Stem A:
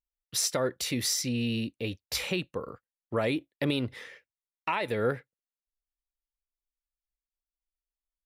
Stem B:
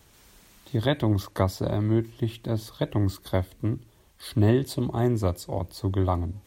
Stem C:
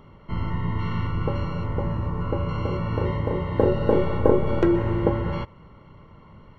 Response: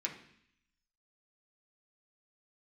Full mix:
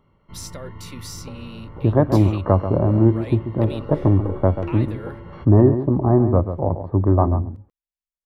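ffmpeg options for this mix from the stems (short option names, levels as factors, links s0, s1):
-filter_complex "[0:a]volume=0.376[s0];[1:a]acontrast=63,lowpass=f=1200:w=0.5412,lowpass=f=1200:w=1.3066,adelay=1100,volume=1.26,asplit=2[s1][s2];[s2]volume=0.316[s3];[2:a]volume=0.251[s4];[s3]aecho=0:1:137:1[s5];[s0][s1][s4][s5]amix=inputs=4:normalize=0"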